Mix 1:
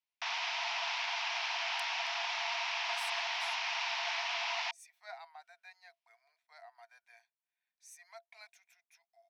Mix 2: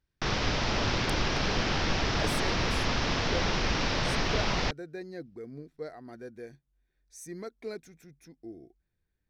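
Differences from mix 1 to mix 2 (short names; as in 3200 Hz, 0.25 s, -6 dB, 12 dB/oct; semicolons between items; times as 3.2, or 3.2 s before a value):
speech: entry -0.70 s; master: remove rippled Chebyshev high-pass 660 Hz, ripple 9 dB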